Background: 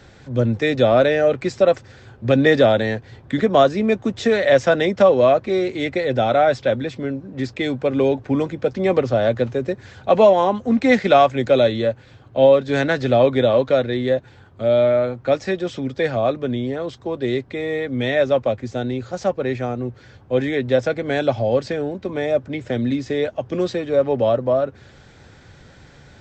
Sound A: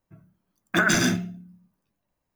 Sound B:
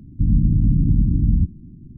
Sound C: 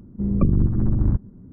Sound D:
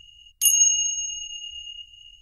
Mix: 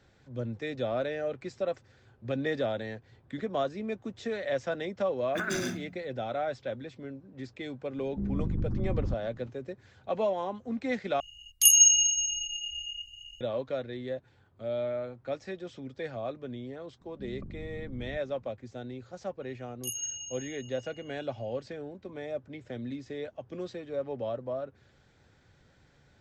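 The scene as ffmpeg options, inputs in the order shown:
-filter_complex "[3:a]asplit=2[s0][s1];[4:a]asplit=2[s2][s3];[0:a]volume=0.15[s4];[s0]alimiter=limit=0.178:level=0:latency=1:release=36[s5];[s1]acompressor=threshold=0.0891:ratio=6:attack=3.2:release=140:knee=1:detection=peak[s6];[s4]asplit=2[s7][s8];[s7]atrim=end=11.204[s9];[s2]atrim=end=2.21,asetpts=PTS-STARTPTS,volume=0.944[s10];[s8]atrim=start=13.406[s11];[1:a]atrim=end=2.35,asetpts=PTS-STARTPTS,volume=0.237,afade=t=in:d=0.004:c=hsin,afade=t=out:st=2.346:d=0.004:c=hsin,adelay=203301S[s12];[s5]atrim=end=1.52,asetpts=PTS-STARTPTS,volume=0.376,afade=t=in:d=0.004:c=hsin,afade=t=out:st=1.516:d=0.004:c=hsin,adelay=7980[s13];[s6]atrim=end=1.52,asetpts=PTS-STARTPTS,volume=0.133,afade=t=in:d=0.004:c=hsin,afade=t=out:st=1.516:d=0.004:c=hsin,adelay=17010[s14];[s3]atrim=end=2.21,asetpts=PTS-STARTPTS,volume=0.126,afade=t=in:d=0.004:c=hsin,afade=t=out:st=2.206:d=0.004:c=hsin,adelay=19420[s15];[s9][s10]acrossfade=d=0.004:c1=hsin:c2=hsin[s16];[s16][s11]acrossfade=d=0.004:c1=hsin:c2=hsin[s17];[s17][s12][s13][s14][s15]amix=inputs=5:normalize=0"

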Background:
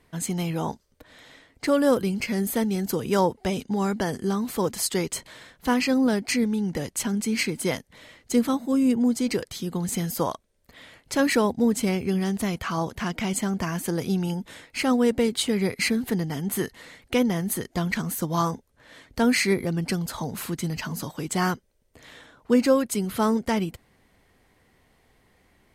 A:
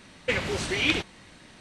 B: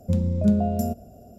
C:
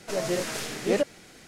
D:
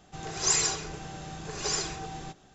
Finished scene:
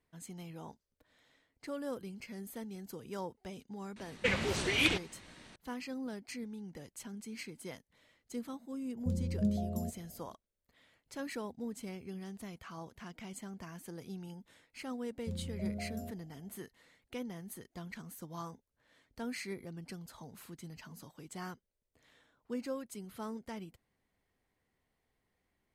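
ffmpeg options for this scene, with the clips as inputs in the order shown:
-filter_complex "[2:a]asplit=2[s0][s1];[0:a]volume=0.106[s2];[s0]equalizer=f=1600:w=0.88:g=-12[s3];[1:a]atrim=end=1.6,asetpts=PTS-STARTPTS,volume=0.596,afade=t=in:d=0.004:c=hsin,afade=t=out:st=1.596:d=0.004:c=hsin,adelay=3960[s4];[s3]atrim=end=1.38,asetpts=PTS-STARTPTS,volume=0.266,afade=t=in:d=0.004:c=hsin,afade=t=out:st=1.376:d=0.004:c=hsin,adelay=8970[s5];[s1]atrim=end=1.38,asetpts=PTS-STARTPTS,volume=0.126,afade=t=in:d=0.004:c=hsin,afade=t=out:st=1.376:d=0.004:c=hsin,adelay=15180[s6];[s2][s4][s5][s6]amix=inputs=4:normalize=0"

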